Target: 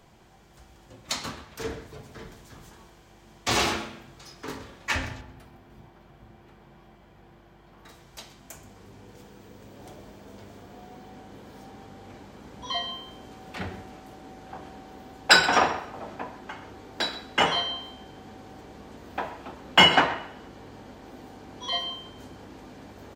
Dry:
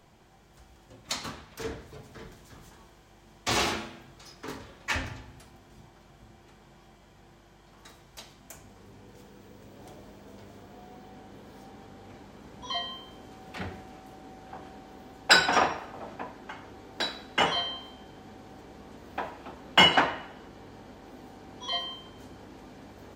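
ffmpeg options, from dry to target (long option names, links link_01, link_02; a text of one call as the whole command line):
ffmpeg -i in.wav -filter_complex "[0:a]asettb=1/sr,asplit=3[link_01][link_02][link_03];[link_01]atrim=end=5.214[link_04];[link_02]atrim=start=5.21:end=7.89,asetpts=PTS-STARTPTS,afade=type=in:duration=0.004:curve=qsin,afade=type=out:start_time=2.676:duration=0.004:curve=qsin,equalizer=frequency=7300:width=0.64:gain=-11.5[link_05];[link_03]atrim=start=7.886[link_06];[link_04][link_05]acrossfade=duration=0.004:curve1=hsin:curve2=qsin[link_07];[link_07][link_06]acrossfade=duration=0.004:curve1=qsin:curve2=hsin,asplit=2[link_08][link_09];[link_09]adelay=128.3,volume=-16dB,highshelf=frequency=4000:gain=-2.89[link_10];[link_08][link_10]amix=inputs=2:normalize=0,volume=2.5dB" out.wav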